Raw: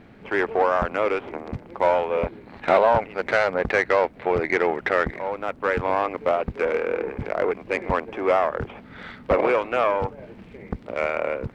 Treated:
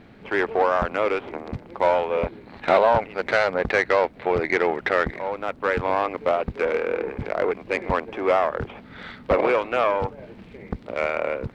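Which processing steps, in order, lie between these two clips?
parametric band 4,000 Hz +4 dB 0.68 octaves

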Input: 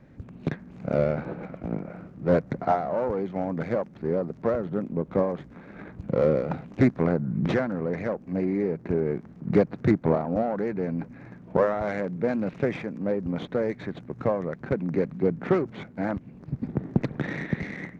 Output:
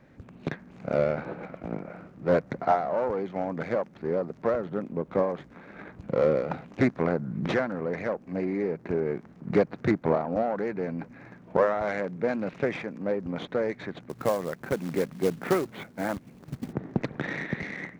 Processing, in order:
low-shelf EQ 330 Hz −9 dB
0:14.09–0:16.73: floating-point word with a short mantissa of 2 bits
level +2 dB

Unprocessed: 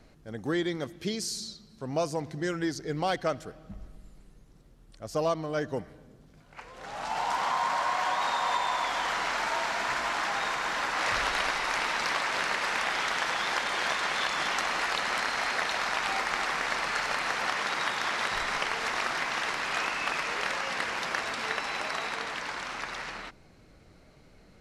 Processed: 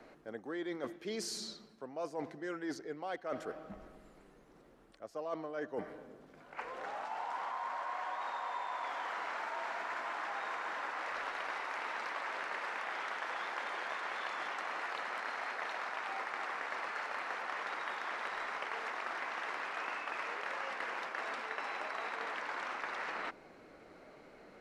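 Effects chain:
three-way crossover with the lows and the highs turned down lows −21 dB, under 260 Hz, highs −12 dB, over 2,400 Hz
reversed playback
downward compressor 12 to 1, threshold −42 dBFS, peak gain reduction 19 dB
reversed playback
level +5.5 dB

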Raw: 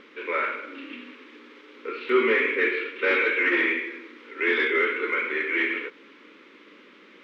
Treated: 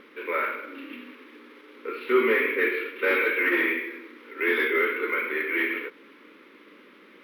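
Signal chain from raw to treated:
parametric band 3,000 Hz −2.5 dB 0.77 octaves
linearly interpolated sample-rate reduction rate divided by 3×

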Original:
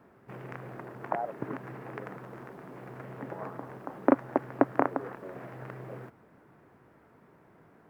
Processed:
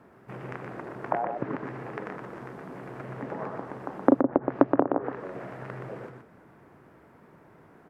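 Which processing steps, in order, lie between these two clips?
treble cut that deepens with the level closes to 570 Hz, closed at −23.5 dBFS
single-tap delay 122 ms −5.5 dB
level +3.5 dB

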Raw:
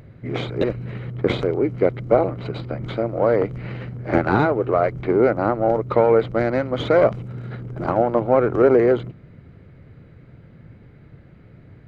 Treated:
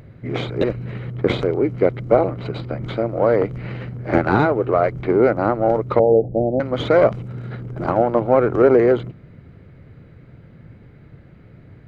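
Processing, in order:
0:05.99–0:06.60: Butterworth low-pass 810 Hz 96 dB per octave
level +1.5 dB

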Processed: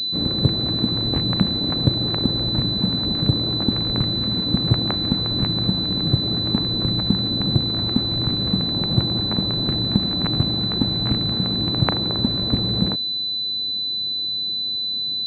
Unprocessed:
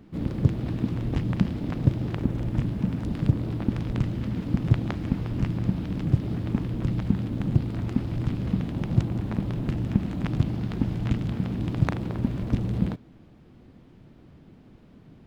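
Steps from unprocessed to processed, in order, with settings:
low-shelf EQ 200 Hz −9.5 dB
switching amplifier with a slow clock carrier 4,000 Hz
level +8.5 dB

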